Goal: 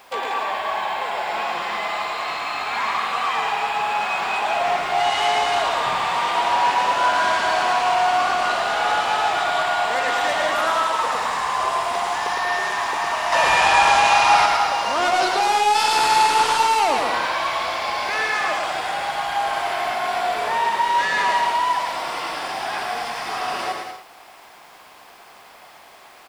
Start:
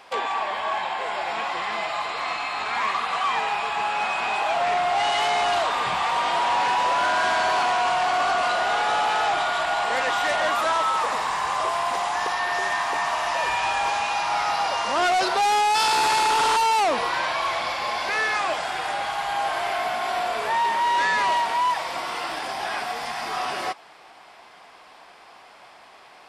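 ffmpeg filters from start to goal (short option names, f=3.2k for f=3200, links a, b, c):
-filter_complex "[0:a]asettb=1/sr,asplit=3[a][b][c];[a]atrim=end=13.324[d];[b]atrim=start=13.32:end=14.46,asetpts=PTS-STARTPTS,afade=t=in:d=0.004:c=qsin,afade=t=out:st=1.136:d=0.004:c=qsin,acontrast=89[e];[c]atrim=start=14.456[f];[d][e]acrossfade=d=0.004:c1=hsin:c2=qsin[g];[g][f]acrossfade=d=0.004:c1=qsin:c2=hsin,acrusher=bits=8:mix=0:aa=0.000001,asplit=2[h][i];[i]aecho=0:1:110|187|240.9|278.6|305:0.631|0.398|0.251|0.158|0.1[j];[h][j]amix=inputs=2:normalize=0"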